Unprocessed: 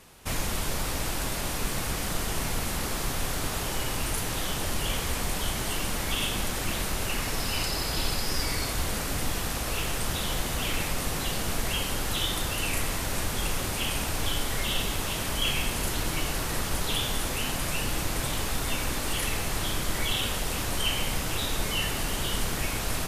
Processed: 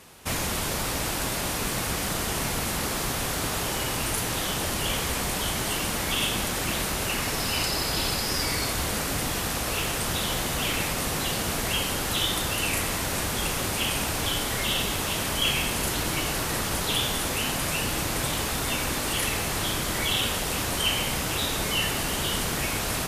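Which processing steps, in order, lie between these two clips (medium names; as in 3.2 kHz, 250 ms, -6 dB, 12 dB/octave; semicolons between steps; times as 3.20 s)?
high-pass 83 Hz 6 dB/octave; trim +3.5 dB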